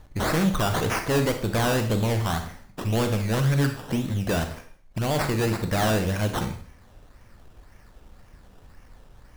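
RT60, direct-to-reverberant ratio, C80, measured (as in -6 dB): 0.50 s, 6.5 dB, 12.5 dB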